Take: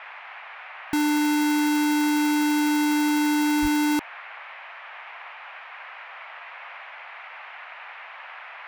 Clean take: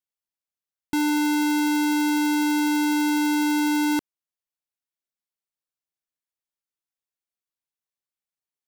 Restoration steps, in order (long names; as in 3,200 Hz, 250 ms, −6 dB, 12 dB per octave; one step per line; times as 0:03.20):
0:03.61–0:03.73: high-pass filter 140 Hz 24 dB per octave
noise reduction from a noise print 30 dB